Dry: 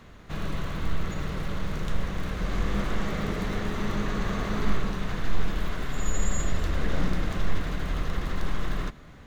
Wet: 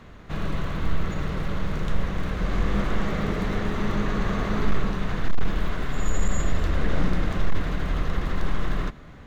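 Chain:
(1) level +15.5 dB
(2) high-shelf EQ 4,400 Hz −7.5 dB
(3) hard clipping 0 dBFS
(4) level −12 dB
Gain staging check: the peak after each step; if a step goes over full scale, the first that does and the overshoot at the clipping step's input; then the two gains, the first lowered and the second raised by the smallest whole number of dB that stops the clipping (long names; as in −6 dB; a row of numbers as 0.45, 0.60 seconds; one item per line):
+5.0, +5.0, 0.0, −12.0 dBFS
step 1, 5.0 dB
step 1 +10.5 dB, step 4 −7 dB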